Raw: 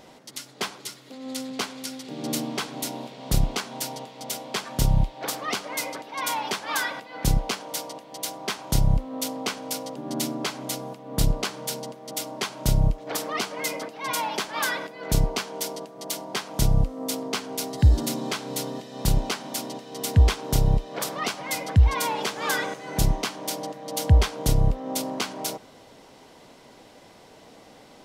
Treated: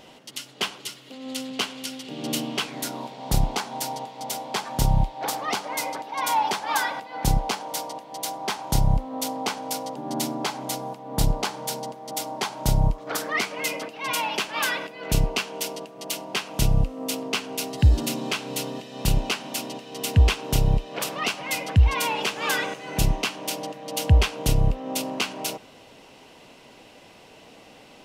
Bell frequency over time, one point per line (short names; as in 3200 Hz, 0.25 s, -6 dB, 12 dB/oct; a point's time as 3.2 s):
bell +10 dB 0.37 oct
2.61 s 2900 Hz
3.09 s 840 Hz
12.82 s 840 Hz
13.57 s 2700 Hz